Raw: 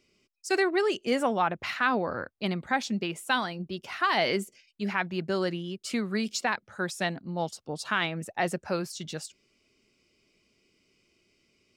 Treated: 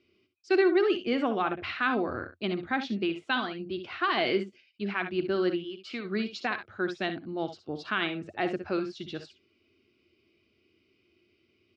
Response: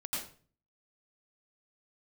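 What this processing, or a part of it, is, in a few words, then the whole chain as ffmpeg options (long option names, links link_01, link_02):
guitar cabinet: -filter_complex "[0:a]asplit=3[link_01][link_02][link_03];[link_01]afade=type=out:start_time=5.63:duration=0.02[link_04];[link_02]lowshelf=frequency=420:gain=-11.5,afade=type=in:start_time=5.63:duration=0.02,afade=type=out:start_time=6.04:duration=0.02[link_05];[link_03]afade=type=in:start_time=6.04:duration=0.02[link_06];[link_04][link_05][link_06]amix=inputs=3:normalize=0,highpass=79,equalizer=frequency=88:width_type=q:width=4:gain=9,equalizer=frequency=170:width_type=q:width=4:gain=-8,equalizer=frequency=340:width_type=q:width=4:gain=7,equalizer=frequency=540:width_type=q:width=4:gain=-6,equalizer=frequency=910:width_type=q:width=4:gain=-8,equalizer=frequency=1900:width_type=q:width=4:gain=-4,lowpass=frequency=3900:width=0.5412,lowpass=frequency=3900:width=1.3066,aecho=1:1:60|71:0.251|0.211"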